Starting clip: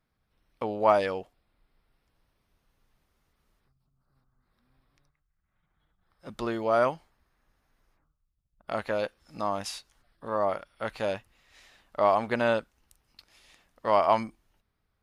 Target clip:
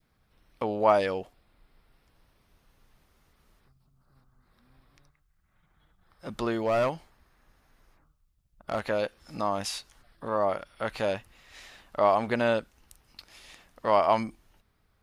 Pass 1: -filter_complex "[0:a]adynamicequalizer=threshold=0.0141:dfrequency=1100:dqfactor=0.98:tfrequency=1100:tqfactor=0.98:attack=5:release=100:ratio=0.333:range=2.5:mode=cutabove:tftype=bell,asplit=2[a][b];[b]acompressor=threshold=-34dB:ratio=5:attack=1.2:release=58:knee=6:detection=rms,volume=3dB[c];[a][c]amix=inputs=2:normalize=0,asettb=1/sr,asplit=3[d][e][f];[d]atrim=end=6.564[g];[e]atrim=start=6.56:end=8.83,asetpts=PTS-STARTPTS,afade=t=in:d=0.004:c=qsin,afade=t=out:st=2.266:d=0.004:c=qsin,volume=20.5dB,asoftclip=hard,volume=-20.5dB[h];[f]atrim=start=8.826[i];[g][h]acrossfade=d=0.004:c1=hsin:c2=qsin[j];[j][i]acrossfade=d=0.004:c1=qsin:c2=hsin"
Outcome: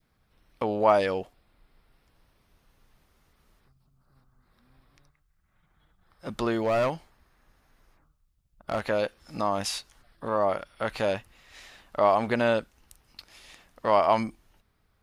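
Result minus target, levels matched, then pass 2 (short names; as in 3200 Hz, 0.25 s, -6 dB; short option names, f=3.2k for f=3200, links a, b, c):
compressor: peak gain reduction -7 dB
-filter_complex "[0:a]adynamicequalizer=threshold=0.0141:dfrequency=1100:dqfactor=0.98:tfrequency=1100:tqfactor=0.98:attack=5:release=100:ratio=0.333:range=2.5:mode=cutabove:tftype=bell,asplit=2[a][b];[b]acompressor=threshold=-43dB:ratio=5:attack=1.2:release=58:knee=6:detection=rms,volume=3dB[c];[a][c]amix=inputs=2:normalize=0,asettb=1/sr,asplit=3[d][e][f];[d]atrim=end=6.564[g];[e]atrim=start=6.56:end=8.83,asetpts=PTS-STARTPTS,afade=t=in:d=0.004:c=qsin,afade=t=out:st=2.266:d=0.004:c=qsin,volume=20.5dB,asoftclip=hard,volume=-20.5dB[h];[f]atrim=start=8.826[i];[g][h]acrossfade=d=0.004:c1=hsin:c2=qsin[j];[j][i]acrossfade=d=0.004:c1=qsin:c2=hsin"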